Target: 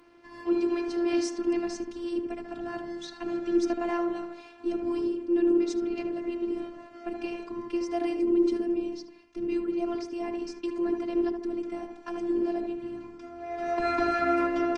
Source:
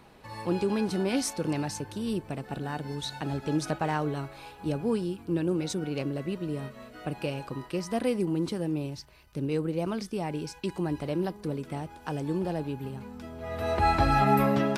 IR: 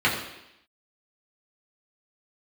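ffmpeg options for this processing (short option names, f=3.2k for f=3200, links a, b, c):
-filter_complex "[0:a]asplit=3[a][b][c];[a]afade=t=out:st=2.53:d=0.02[d];[b]afreqshift=-26,afade=t=in:st=2.53:d=0.02,afade=t=out:st=3.06:d=0.02[e];[c]afade=t=in:st=3.06:d=0.02[f];[d][e][f]amix=inputs=3:normalize=0,highpass=140,equalizer=f=150:t=q:w=4:g=8,equalizer=f=230:t=q:w=4:g=7,equalizer=f=340:t=q:w=4:g=4,equalizer=f=510:t=q:w=4:g=-8,equalizer=f=3.8k:t=q:w=4:g=-7,lowpass=f=6.6k:w=0.5412,lowpass=f=6.6k:w=1.3066,asplit=2[g][h];[h]adelay=75,lowpass=f=1.2k:p=1,volume=-4.5dB,asplit=2[i][j];[j]adelay=75,lowpass=f=1.2k:p=1,volume=0.5,asplit=2[k][l];[l]adelay=75,lowpass=f=1.2k:p=1,volume=0.5,asplit=2[m][n];[n]adelay=75,lowpass=f=1.2k:p=1,volume=0.5,asplit=2[o][p];[p]adelay=75,lowpass=f=1.2k:p=1,volume=0.5,asplit=2[q][r];[r]adelay=75,lowpass=f=1.2k:p=1,volume=0.5[s];[i][k][m][o][q][s]amix=inputs=6:normalize=0[t];[g][t]amix=inputs=2:normalize=0,afftfilt=real='hypot(re,im)*cos(PI*b)':imag='0':win_size=512:overlap=0.75,volume=1.5dB" -ar 48000 -c:a libopus -b:a 24k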